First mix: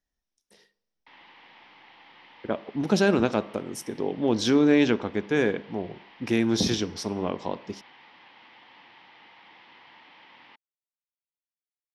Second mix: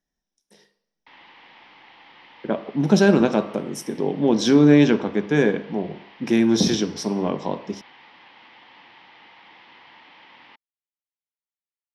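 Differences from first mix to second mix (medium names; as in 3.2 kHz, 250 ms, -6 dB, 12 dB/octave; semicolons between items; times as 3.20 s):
speech: send +9.0 dB; background +3.5 dB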